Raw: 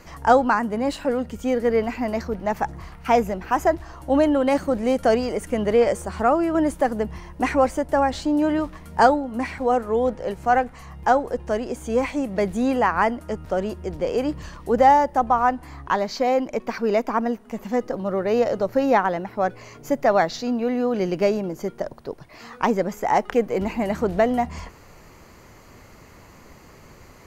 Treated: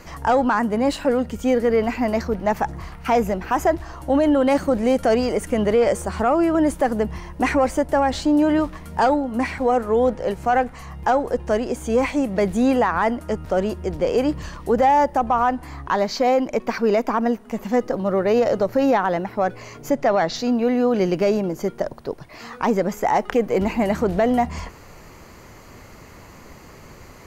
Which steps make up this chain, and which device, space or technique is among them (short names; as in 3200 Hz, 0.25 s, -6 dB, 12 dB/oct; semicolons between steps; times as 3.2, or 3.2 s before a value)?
19.9–20.36 LPF 7800 Hz 12 dB/oct; soft clipper into limiter (soft clip -6 dBFS, distortion -25 dB; limiter -14 dBFS, peak gain reduction 7 dB); gain +4 dB